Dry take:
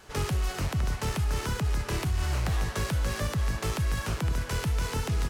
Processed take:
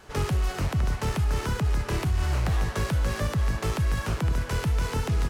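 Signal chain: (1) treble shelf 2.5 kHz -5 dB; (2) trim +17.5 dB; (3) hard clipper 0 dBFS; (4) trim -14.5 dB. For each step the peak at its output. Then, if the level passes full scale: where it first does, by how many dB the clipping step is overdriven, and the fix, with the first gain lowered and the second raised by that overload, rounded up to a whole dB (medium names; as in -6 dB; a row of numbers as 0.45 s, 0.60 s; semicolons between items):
-20.5 dBFS, -3.0 dBFS, -3.0 dBFS, -17.5 dBFS; nothing clips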